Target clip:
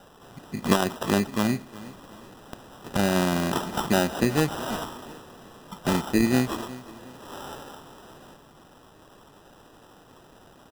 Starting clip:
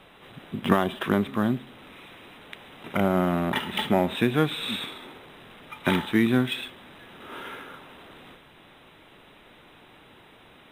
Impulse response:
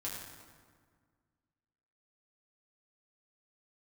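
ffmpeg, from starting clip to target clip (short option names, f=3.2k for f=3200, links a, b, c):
-af "acrusher=samples=20:mix=1:aa=0.000001,aecho=1:1:364|728|1092:0.126|0.0453|0.0163"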